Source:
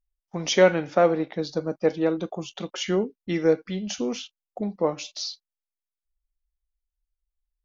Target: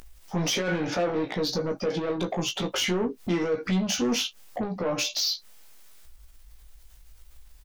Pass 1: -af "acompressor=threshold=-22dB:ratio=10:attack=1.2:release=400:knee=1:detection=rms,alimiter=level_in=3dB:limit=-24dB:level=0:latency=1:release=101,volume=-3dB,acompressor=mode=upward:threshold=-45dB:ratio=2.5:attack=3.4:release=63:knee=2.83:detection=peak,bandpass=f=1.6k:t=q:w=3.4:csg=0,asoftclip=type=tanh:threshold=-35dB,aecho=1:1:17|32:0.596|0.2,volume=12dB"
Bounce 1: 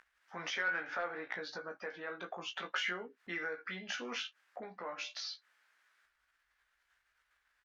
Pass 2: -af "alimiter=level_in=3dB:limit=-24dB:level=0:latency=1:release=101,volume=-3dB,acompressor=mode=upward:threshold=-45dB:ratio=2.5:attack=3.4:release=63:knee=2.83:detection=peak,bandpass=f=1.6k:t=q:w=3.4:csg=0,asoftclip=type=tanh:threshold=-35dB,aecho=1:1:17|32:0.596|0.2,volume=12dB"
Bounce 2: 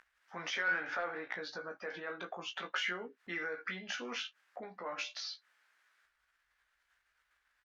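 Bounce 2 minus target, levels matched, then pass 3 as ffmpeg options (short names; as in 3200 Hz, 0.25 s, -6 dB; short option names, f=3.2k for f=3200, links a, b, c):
2000 Hz band +10.0 dB
-af "alimiter=level_in=3dB:limit=-24dB:level=0:latency=1:release=101,volume=-3dB,acompressor=mode=upward:threshold=-45dB:ratio=2.5:attack=3.4:release=63:knee=2.83:detection=peak,asoftclip=type=tanh:threshold=-35dB,aecho=1:1:17|32:0.596|0.2,volume=12dB"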